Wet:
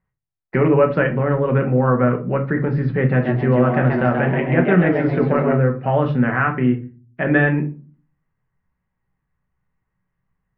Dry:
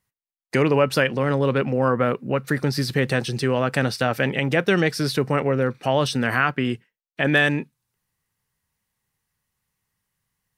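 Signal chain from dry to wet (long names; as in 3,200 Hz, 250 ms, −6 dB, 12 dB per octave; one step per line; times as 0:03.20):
one scale factor per block 7 bits
low-pass filter 2,000 Hz 24 dB per octave
low-shelf EQ 120 Hz +7.5 dB
0:03.09–0:05.55: echo with shifted repeats 132 ms, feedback 37%, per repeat +110 Hz, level −5.5 dB
rectangular room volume 200 cubic metres, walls furnished, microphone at 1.1 metres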